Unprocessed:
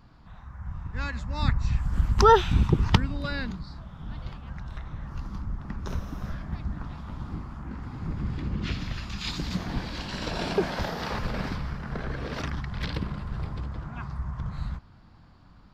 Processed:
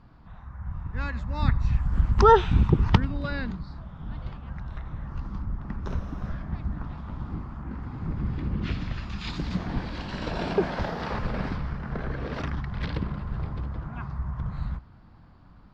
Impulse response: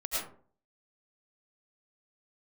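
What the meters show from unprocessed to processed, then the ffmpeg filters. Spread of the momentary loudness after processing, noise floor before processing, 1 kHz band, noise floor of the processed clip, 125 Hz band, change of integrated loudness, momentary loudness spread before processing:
15 LU, -53 dBFS, +0.5 dB, -51 dBFS, +1.5 dB, +1.0 dB, 15 LU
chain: -filter_complex "[0:a]aemphasis=mode=reproduction:type=75fm,asplit=2[a][b];[1:a]atrim=start_sample=2205,atrim=end_sample=4410[c];[b][c]afir=irnorm=-1:irlink=0,volume=-21dB[d];[a][d]amix=inputs=2:normalize=0"

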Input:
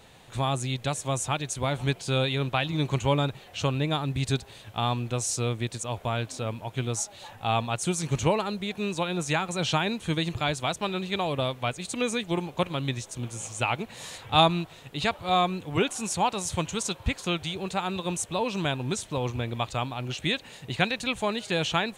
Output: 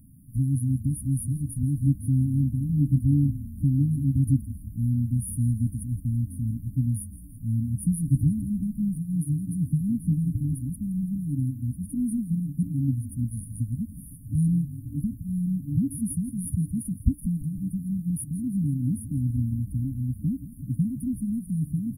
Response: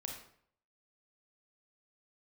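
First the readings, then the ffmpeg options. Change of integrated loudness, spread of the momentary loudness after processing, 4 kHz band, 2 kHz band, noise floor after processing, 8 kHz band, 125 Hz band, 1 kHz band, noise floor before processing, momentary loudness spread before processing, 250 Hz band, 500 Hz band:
+1.0 dB, 7 LU, under -40 dB, under -40 dB, -43 dBFS, -6.5 dB, +6.5 dB, under -40 dB, -50 dBFS, 6 LU, +5.5 dB, under -30 dB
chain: -filter_complex "[0:a]asplit=7[a][b][c][d][e][f][g];[b]adelay=166,afreqshift=-30,volume=-15dB[h];[c]adelay=332,afreqshift=-60,volume=-19.7dB[i];[d]adelay=498,afreqshift=-90,volume=-24.5dB[j];[e]adelay=664,afreqshift=-120,volume=-29.2dB[k];[f]adelay=830,afreqshift=-150,volume=-33.9dB[l];[g]adelay=996,afreqshift=-180,volume=-38.7dB[m];[a][h][i][j][k][l][m]amix=inputs=7:normalize=0,afftfilt=real='re*(1-between(b*sr/4096,300,9300))':imag='im*(1-between(b*sr/4096,300,9300))':win_size=4096:overlap=0.75,volume=6.5dB"

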